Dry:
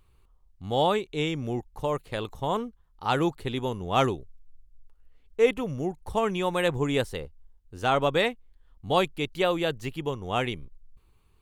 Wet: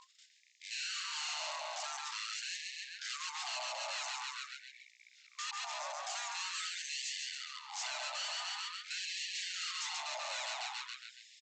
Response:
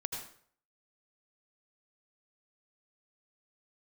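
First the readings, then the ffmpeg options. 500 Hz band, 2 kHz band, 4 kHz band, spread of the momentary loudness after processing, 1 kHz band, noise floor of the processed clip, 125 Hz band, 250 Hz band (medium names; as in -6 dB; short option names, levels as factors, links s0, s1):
-25.5 dB, -6.5 dB, -2.5 dB, 7 LU, -13.5 dB, -65 dBFS, under -40 dB, under -40 dB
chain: -filter_complex "[0:a]asplit=2[s0][s1];[s1]adelay=138,lowpass=f=4500:p=1,volume=0.501,asplit=2[s2][s3];[s3]adelay=138,lowpass=f=4500:p=1,volume=0.52,asplit=2[s4][s5];[s5]adelay=138,lowpass=f=4500:p=1,volume=0.52,asplit=2[s6][s7];[s7]adelay=138,lowpass=f=4500:p=1,volume=0.52,asplit=2[s8][s9];[s9]adelay=138,lowpass=f=4500:p=1,volume=0.52,asplit=2[s10][s11];[s11]adelay=138,lowpass=f=4500:p=1,volume=0.52[s12];[s2][s4][s6][s8][s10][s12]amix=inputs=6:normalize=0[s13];[s0][s13]amix=inputs=2:normalize=0,aphaser=in_gain=1:out_gain=1:delay=2.3:decay=0.33:speed=1.9:type=triangular,acompressor=threshold=0.0316:ratio=6,agate=range=0.251:threshold=0.00158:ratio=16:detection=peak,aexciter=amount=10.4:drive=8.7:freq=3000,aeval=exprs='val(0)+0.00794*(sin(2*PI*60*n/s)+sin(2*PI*2*60*n/s)/2+sin(2*PI*3*60*n/s)/3+sin(2*PI*4*60*n/s)/4+sin(2*PI*5*60*n/s)/5)':c=same,aeval=exprs='val(0)*sin(2*PI*750*n/s)':c=same,aresample=16000,asoftclip=type=hard:threshold=0.0119,aresample=44100,afftfilt=real='re*gte(b*sr/1024,530*pow(1700/530,0.5+0.5*sin(2*PI*0.46*pts/sr)))':imag='im*gte(b*sr/1024,530*pow(1700/530,0.5+0.5*sin(2*PI*0.46*pts/sr)))':win_size=1024:overlap=0.75,volume=1.12"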